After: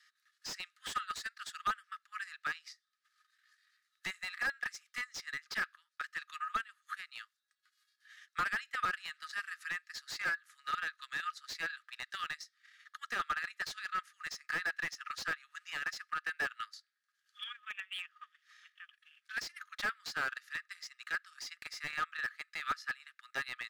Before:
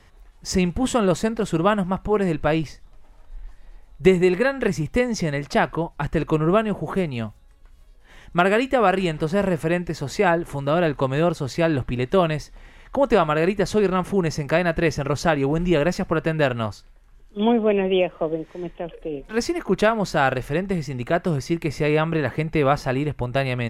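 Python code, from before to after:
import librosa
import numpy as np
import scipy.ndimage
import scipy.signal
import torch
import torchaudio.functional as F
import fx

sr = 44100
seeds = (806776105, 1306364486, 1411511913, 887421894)

y = scipy.signal.sosfilt(scipy.signal.cheby1(6, 9, 1200.0, 'highpass', fs=sr, output='sos'), x)
y = fx.transient(y, sr, attack_db=3, sustain_db=-10)
y = fx.slew_limit(y, sr, full_power_hz=70.0)
y = F.gain(torch.from_numpy(y), -3.0).numpy()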